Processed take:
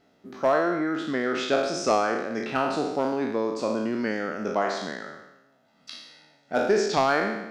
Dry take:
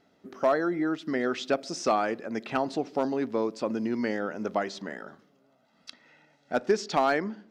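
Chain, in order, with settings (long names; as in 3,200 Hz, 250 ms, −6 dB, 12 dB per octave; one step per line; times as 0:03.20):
peak hold with a decay on every bin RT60 0.96 s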